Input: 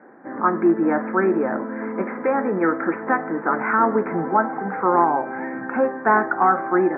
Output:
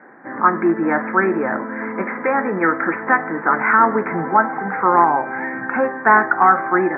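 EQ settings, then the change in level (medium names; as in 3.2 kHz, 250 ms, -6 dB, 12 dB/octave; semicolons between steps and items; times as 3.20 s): ten-band graphic EQ 125 Hz +6 dB, 1 kHz +4 dB, 2 kHz +10 dB; -1.0 dB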